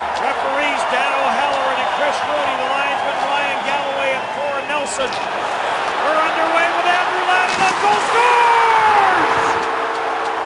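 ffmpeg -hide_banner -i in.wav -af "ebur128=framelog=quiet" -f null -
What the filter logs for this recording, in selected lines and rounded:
Integrated loudness:
  I:         -16.4 LUFS
  Threshold: -26.4 LUFS
Loudness range:
  LRA:         5.0 LU
  Threshold: -36.5 LUFS
  LRA low:   -18.9 LUFS
  LRA high:  -14.0 LUFS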